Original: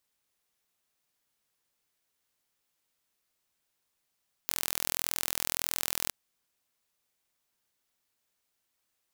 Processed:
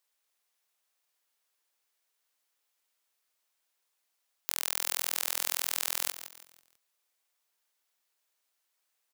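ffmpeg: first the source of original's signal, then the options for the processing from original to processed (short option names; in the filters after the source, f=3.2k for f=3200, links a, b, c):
-f lavfi -i "aevalsrc='0.708*eq(mod(n,1058),0)':d=1.61:s=44100"
-filter_complex "[0:a]highpass=490,asplit=2[a][b];[b]asplit=4[c][d][e][f];[c]adelay=164,afreqshift=-100,volume=-11.5dB[g];[d]adelay=328,afreqshift=-200,volume=-20.1dB[h];[e]adelay=492,afreqshift=-300,volume=-28.8dB[i];[f]adelay=656,afreqshift=-400,volume=-37.4dB[j];[g][h][i][j]amix=inputs=4:normalize=0[k];[a][k]amix=inputs=2:normalize=0"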